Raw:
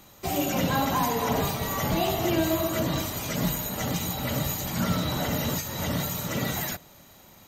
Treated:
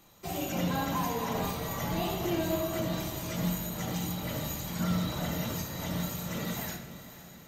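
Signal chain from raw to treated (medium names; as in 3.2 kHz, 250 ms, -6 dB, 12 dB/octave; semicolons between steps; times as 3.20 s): on a send: echo that smears into a reverb 530 ms, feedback 53%, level -13.5 dB; on the sum: simulated room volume 210 m³, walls mixed, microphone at 0.77 m; trim -8.5 dB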